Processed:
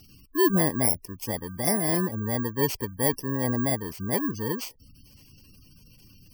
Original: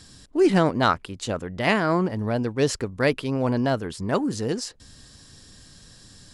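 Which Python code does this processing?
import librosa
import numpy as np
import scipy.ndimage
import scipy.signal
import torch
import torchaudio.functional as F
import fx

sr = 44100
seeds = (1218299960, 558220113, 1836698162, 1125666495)

y = fx.bit_reversed(x, sr, seeds[0], block=32)
y = fx.spec_gate(y, sr, threshold_db=-20, keep='strong')
y = F.gain(torch.from_numpy(y), -2.5).numpy()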